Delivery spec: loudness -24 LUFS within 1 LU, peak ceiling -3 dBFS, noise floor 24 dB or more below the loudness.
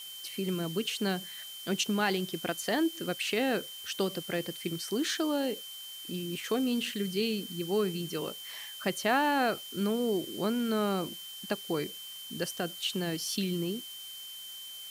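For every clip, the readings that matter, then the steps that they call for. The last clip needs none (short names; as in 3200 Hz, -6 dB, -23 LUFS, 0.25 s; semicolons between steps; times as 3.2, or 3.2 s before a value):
steady tone 3100 Hz; tone level -43 dBFS; noise floor -44 dBFS; noise floor target -57 dBFS; loudness -32.5 LUFS; peak -15.0 dBFS; loudness target -24.0 LUFS
-> notch 3100 Hz, Q 30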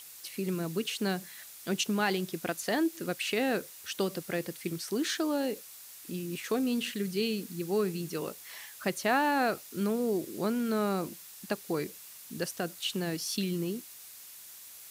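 steady tone none; noise floor -49 dBFS; noise floor target -57 dBFS
-> denoiser 8 dB, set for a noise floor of -49 dBFS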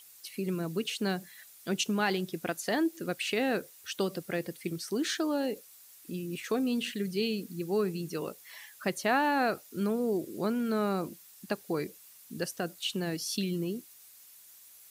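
noise floor -55 dBFS; noise floor target -57 dBFS
-> denoiser 6 dB, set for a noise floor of -55 dBFS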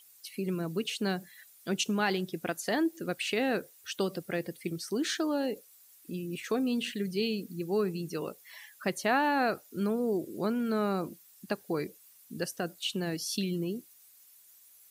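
noise floor -59 dBFS; loudness -32.5 LUFS; peak -15.5 dBFS; loudness target -24.0 LUFS
-> gain +8.5 dB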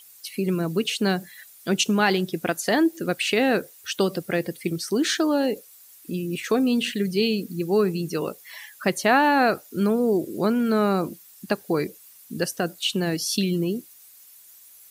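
loudness -24.0 LUFS; peak -7.0 dBFS; noise floor -50 dBFS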